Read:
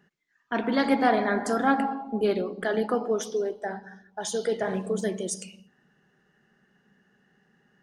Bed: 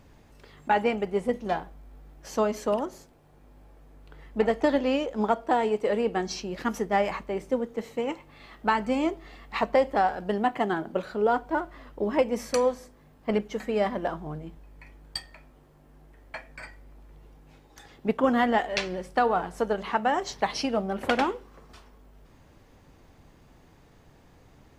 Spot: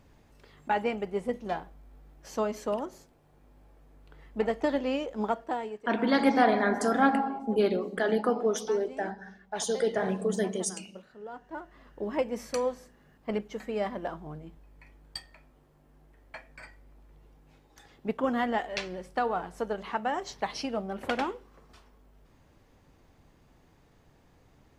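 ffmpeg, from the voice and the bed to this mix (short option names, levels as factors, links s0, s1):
-filter_complex "[0:a]adelay=5350,volume=0.944[s0];[1:a]volume=2.99,afade=t=out:st=5.29:d=0.57:silence=0.177828,afade=t=in:st=11.31:d=0.81:silence=0.199526[s1];[s0][s1]amix=inputs=2:normalize=0"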